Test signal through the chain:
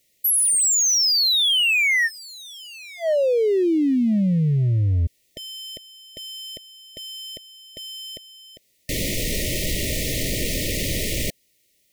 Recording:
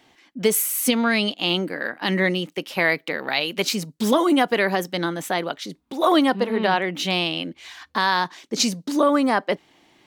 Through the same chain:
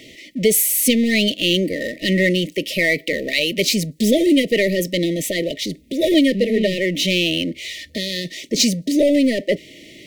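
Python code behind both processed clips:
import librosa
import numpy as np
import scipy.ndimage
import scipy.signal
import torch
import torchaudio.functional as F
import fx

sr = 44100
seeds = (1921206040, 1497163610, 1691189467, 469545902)

y = fx.power_curve(x, sr, exponent=0.7)
y = fx.brickwall_bandstop(y, sr, low_hz=660.0, high_hz=1800.0)
y = y * librosa.db_to_amplitude(1.5)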